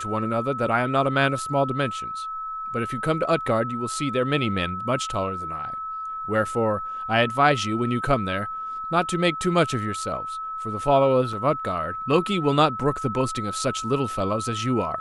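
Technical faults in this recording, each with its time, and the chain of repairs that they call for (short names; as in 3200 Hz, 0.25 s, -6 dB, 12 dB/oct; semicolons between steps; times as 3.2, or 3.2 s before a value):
tone 1300 Hz -29 dBFS
11.33 gap 3.1 ms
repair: notch 1300 Hz, Q 30; interpolate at 11.33, 3.1 ms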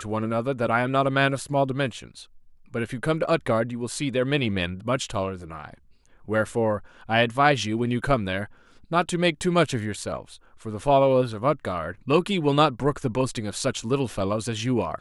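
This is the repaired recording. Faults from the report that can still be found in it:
none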